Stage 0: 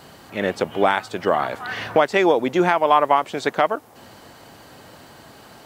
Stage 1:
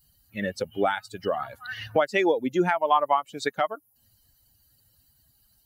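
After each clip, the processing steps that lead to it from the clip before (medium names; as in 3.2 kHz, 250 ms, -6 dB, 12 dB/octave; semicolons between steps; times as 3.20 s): expander on every frequency bin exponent 2; in parallel at +0.5 dB: compression, threshold -29 dBFS, peak gain reduction 15.5 dB; on the sum: trim -4.5 dB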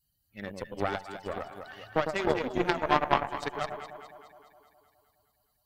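echo whose repeats swap between lows and highs 104 ms, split 820 Hz, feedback 77%, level -3 dB; Chebyshev shaper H 3 -13 dB, 4 -20 dB, 7 -36 dB, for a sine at -6 dBFS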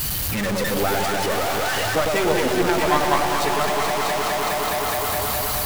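jump at every zero crossing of -20 dBFS; on a send: two-band feedback delay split 870 Hz, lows 186 ms, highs 654 ms, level -7 dB; on the sum: trim +1.5 dB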